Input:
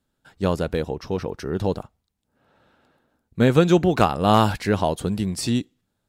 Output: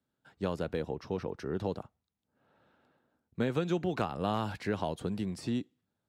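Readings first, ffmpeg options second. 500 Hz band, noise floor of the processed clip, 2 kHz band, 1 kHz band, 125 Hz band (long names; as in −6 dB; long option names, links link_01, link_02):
−12.0 dB, below −85 dBFS, −12.0 dB, −14.5 dB, −13.5 dB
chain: -filter_complex "[0:a]acrossover=split=240|1900[link_01][link_02][link_03];[link_01]acompressor=threshold=-28dB:ratio=4[link_04];[link_02]acompressor=threshold=-23dB:ratio=4[link_05];[link_03]acompressor=threshold=-34dB:ratio=4[link_06];[link_04][link_05][link_06]amix=inputs=3:normalize=0,highpass=84,aemphasis=mode=reproduction:type=cd,volume=-7.5dB"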